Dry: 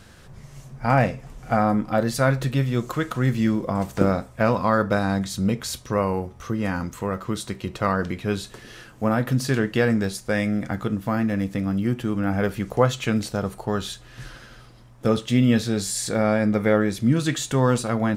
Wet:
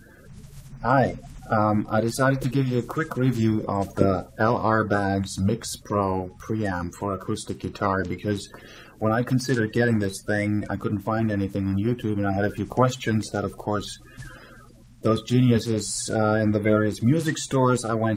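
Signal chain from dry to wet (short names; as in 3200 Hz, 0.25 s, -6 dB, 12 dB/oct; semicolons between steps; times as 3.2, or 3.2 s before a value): bin magnitudes rounded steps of 30 dB; bell 2800 Hz -2.5 dB 1.7 oct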